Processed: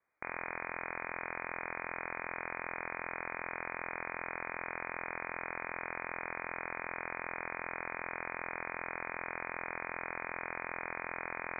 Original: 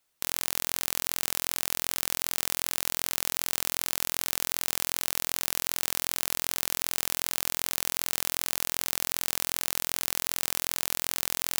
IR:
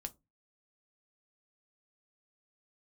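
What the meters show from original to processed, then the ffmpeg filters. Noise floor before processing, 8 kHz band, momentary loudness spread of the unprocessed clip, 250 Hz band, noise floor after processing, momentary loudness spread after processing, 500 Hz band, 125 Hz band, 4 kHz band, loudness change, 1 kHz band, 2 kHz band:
−75 dBFS, below −40 dB, 0 LU, −4.5 dB, −49 dBFS, 0 LU, −0.5 dB, −7.5 dB, below −40 dB, −11.5 dB, +0.5 dB, 0.0 dB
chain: -af "bandreject=frequency=65.77:width_type=h:width=4,bandreject=frequency=131.54:width_type=h:width=4,bandreject=frequency=197.31:width_type=h:width=4,bandreject=frequency=263.08:width_type=h:width=4,bandreject=frequency=328.85:width_type=h:width=4,bandreject=frequency=394.62:width_type=h:width=4,bandreject=frequency=460.39:width_type=h:width=4,bandreject=frequency=526.16:width_type=h:width=4,bandreject=frequency=591.93:width_type=h:width=4,bandreject=frequency=657.7:width_type=h:width=4,bandreject=frequency=723.47:width_type=h:width=4,bandreject=frequency=789.24:width_type=h:width=4,bandreject=frequency=855.01:width_type=h:width=4,bandreject=frequency=920.78:width_type=h:width=4,bandreject=frequency=986.55:width_type=h:width=4,bandreject=frequency=1052.32:width_type=h:width=4,bandreject=frequency=1118.09:width_type=h:width=4,bandreject=frequency=1183.86:width_type=h:width=4,bandreject=frequency=1249.63:width_type=h:width=4,bandreject=frequency=1315.4:width_type=h:width=4,bandreject=frequency=1381.17:width_type=h:width=4,bandreject=frequency=1446.94:width_type=h:width=4,bandreject=frequency=1512.71:width_type=h:width=4,bandreject=frequency=1578.48:width_type=h:width=4,bandreject=frequency=1644.25:width_type=h:width=4,lowpass=frequency=2100:width_type=q:width=0.5098,lowpass=frequency=2100:width_type=q:width=0.6013,lowpass=frequency=2100:width_type=q:width=0.9,lowpass=frequency=2100:width_type=q:width=2.563,afreqshift=-2500,volume=1dB"

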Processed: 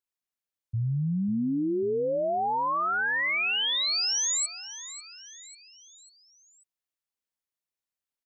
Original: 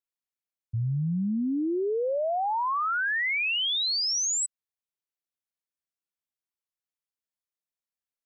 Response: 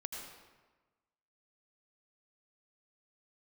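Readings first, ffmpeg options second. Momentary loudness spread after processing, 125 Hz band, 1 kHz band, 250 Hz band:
16 LU, 0.0 dB, 0.0 dB, 0.0 dB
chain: -af "aecho=1:1:544|1088|1632|2176:0.188|0.0904|0.0434|0.0208"

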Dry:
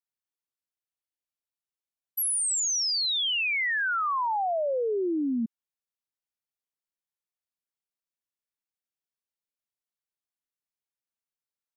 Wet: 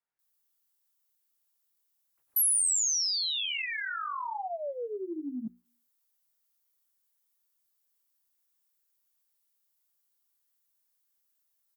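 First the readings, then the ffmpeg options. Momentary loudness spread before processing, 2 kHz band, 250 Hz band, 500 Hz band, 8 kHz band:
6 LU, −8.5 dB, −9.0 dB, −8.5 dB, +0.5 dB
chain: -filter_complex "[0:a]bandreject=frequency=60:width_type=h:width=6,bandreject=frequency=120:width_type=h:width=6,bandreject=frequency=180:width_type=h:width=6,bandreject=frequency=240:width_type=h:width=6,bandreject=frequency=300:width_type=h:width=6,bandreject=frequency=360:width_type=h:width=6,acrossover=split=3800[link_01][link_02];[link_02]acompressor=threshold=-41dB:ratio=4:attack=1:release=60[link_03];[link_01][link_03]amix=inputs=2:normalize=0,bandreject=frequency=2500:width=25,flanger=delay=18.5:depth=5.4:speed=0.9,equalizer=frequency=1400:width=0.45:gain=6,areverse,acompressor=threshold=-37dB:ratio=8,areverse,aemphasis=mode=production:type=75fm,asplit=2[link_04][link_05];[link_05]volume=26.5dB,asoftclip=hard,volume=-26.5dB,volume=-5.5dB[link_06];[link_04][link_06]amix=inputs=2:normalize=0,acrossover=split=2300[link_07][link_08];[link_08]adelay=190[link_09];[link_07][link_09]amix=inputs=2:normalize=0"

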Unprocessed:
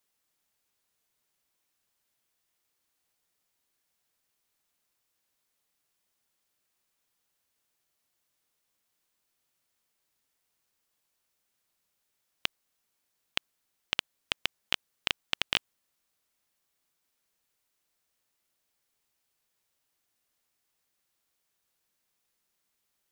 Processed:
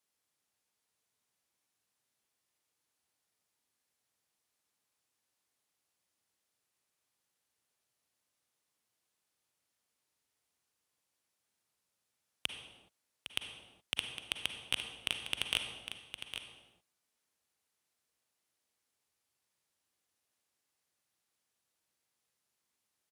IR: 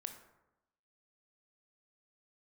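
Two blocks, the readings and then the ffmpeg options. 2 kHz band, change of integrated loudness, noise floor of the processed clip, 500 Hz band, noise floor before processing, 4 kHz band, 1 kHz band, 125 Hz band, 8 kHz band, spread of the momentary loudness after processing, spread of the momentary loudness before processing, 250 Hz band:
−5.0 dB, −5.0 dB, −85 dBFS, −6.0 dB, −80 dBFS, −3.5 dB, −8.0 dB, −3.0 dB, +1.0 dB, 14 LU, 7 LU, −5.0 dB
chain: -filter_complex "[0:a]highpass=frequency=56:width=0.5412,highpass=frequency=56:width=1.3066,asplit=2[link_01][link_02];[link_02]acontrast=70,volume=-1dB[link_03];[link_01][link_03]amix=inputs=2:normalize=0,asoftclip=type=tanh:threshold=-10dB,aeval=exprs='0.316*(cos(1*acos(clip(val(0)/0.316,-1,1)))-cos(1*PI/2))+0.0282*(cos(2*acos(clip(val(0)/0.316,-1,1)))-cos(2*PI/2))+0.0891*(cos(3*acos(clip(val(0)/0.316,-1,1)))-cos(3*PI/2))+0.00794*(cos(5*acos(clip(val(0)/0.316,-1,1)))-cos(5*PI/2))':channel_layout=same,asoftclip=type=hard:threshold=-13.5dB,aecho=1:1:808:0.335[link_04];[1:a]atrim=start_sample=2205,afade=type=out:start_time=0.27:duration=0.01,atrim=end_sample=12348,asetrate=22932,aresample=44100[link_05];[link_04][link_05]afir=irnorm=-1:irlink=0,volume=-2dB"

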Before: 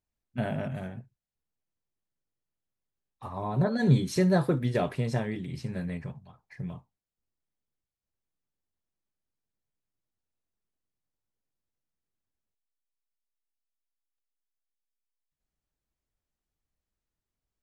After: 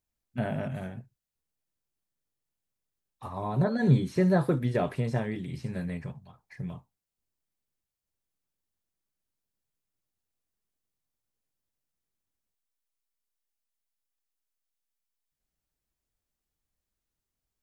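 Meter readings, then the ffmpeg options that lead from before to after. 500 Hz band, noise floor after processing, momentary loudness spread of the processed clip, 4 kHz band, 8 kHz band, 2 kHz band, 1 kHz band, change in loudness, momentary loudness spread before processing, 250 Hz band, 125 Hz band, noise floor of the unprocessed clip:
0.0 dB, below −85 dBFS, 17 LU, −5.0 dB, can't be measured, −0.5 dB, 0.0 dB, −0.5 dB, 17 LU, 0.0 dB, 0.0 dB, below −85 dBFS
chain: -filter_complex "[0:a]highshelf=frequency=5500:gain=5.5,acrossover=split=2500[link_01][link_02];[link_02]acompressor=threshold=-51dB:ratio=4:attack=1:release=60[link_03];[link_01][link_03]amix=inputs=2:normalize=0"

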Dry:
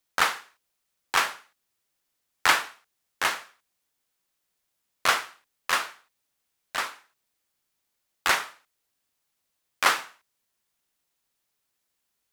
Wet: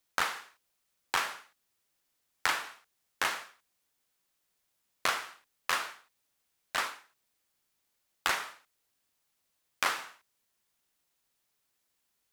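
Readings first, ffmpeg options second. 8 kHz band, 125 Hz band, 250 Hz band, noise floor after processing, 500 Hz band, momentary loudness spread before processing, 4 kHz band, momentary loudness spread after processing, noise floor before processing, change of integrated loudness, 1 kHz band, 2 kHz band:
−6.5 dB, −6.0 dB, −6.5 dB, −79 dBFS, −6.5 dB, 16 LU, −7.0 dB, 15 LU, −79 dBFS, −7.0 dB, −7.0 dB, −7.0 dB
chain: -af "acompressor=threshold=-26dB:ratio=6"

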